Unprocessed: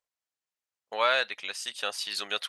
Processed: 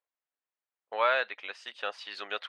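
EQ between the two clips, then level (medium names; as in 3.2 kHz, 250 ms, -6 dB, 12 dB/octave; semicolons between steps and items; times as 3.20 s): band-pass 320–2300 Hz; 0.0 dB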